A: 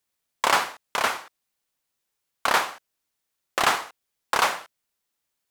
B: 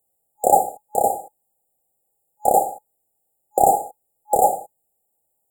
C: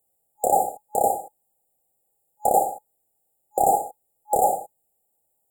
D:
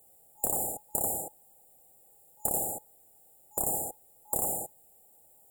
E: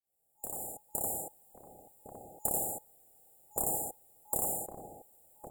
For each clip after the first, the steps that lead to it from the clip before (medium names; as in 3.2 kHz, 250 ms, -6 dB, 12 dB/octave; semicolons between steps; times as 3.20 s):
FFT band-reject 840–7000 Hz; graphic EQ with 31 bands 250 Hz -4 dB, 500 Hz +6 dB, 800 Hz +9 dB, 16 kHz +6 dB; trim +7 dB
peak limiter -8 dBFS, peak gain reduction 7 dB
spectrum-flattening compressor 4:1; trim +2 dB
fade-in on the opening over 1.31 s; echo from a far wall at 190 m, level -7 dB; trim -2.5 dB